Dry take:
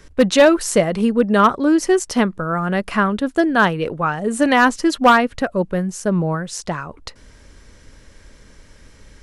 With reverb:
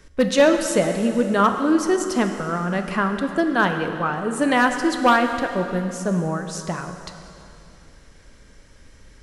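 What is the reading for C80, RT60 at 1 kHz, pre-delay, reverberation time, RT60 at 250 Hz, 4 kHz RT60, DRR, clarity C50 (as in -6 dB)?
7.5 dB, 2.8 s, 6 ms, 2.8 s, 2.8 s, 2.6 s, 5.5 dB, 7.0 dB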